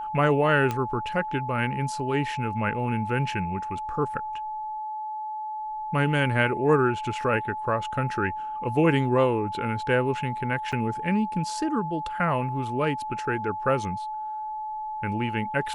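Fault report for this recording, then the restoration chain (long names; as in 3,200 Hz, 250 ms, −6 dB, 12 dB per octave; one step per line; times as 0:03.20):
whistle 860 Hz −30 dBFS
0:00.71: click −14 dBFS
0:10.72–0:10.73: drop-out 6.1 ms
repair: click removal
notch filter 860 Hz, Q 30
repair the gap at 0:10.72, 6.1 ms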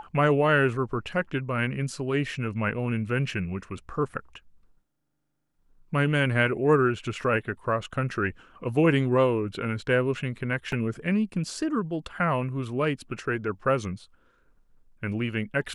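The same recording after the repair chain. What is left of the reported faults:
none of them is left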